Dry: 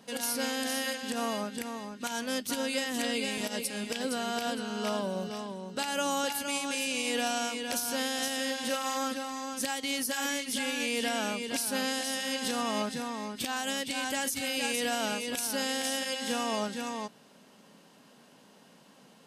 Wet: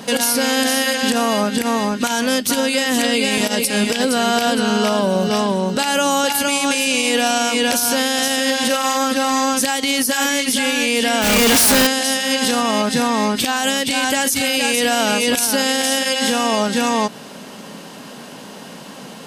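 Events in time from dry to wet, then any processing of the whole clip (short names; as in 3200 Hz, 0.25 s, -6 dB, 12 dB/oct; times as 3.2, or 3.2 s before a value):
11.22–11.87 infinite clipping
whole clip: compressor, threshold -35 dBFS; maximiser +28.5 dB; gain -6.5 dB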